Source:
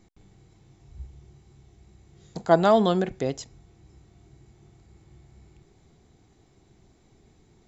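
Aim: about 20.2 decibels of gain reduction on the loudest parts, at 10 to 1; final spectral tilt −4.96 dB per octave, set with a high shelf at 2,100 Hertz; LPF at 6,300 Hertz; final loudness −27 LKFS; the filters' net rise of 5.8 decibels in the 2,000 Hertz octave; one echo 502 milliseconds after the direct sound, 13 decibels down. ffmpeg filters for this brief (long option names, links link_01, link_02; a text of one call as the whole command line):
ffmpeg -i in.wav -af "lowpass=6300,equalizer=frequency=2000:width_type=o:gain=5,highshelf=frequency=2100:gain=6.5,acompressor=threshold=-32dB:ratio=10,aecho=1:1:502:0.224,volume=14.5dB" out.wav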